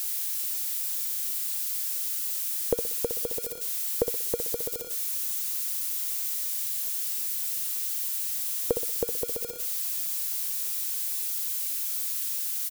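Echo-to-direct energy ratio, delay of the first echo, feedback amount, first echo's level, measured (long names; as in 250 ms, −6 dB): −8.0 dB, 62 ms, 36%, −8.5 dB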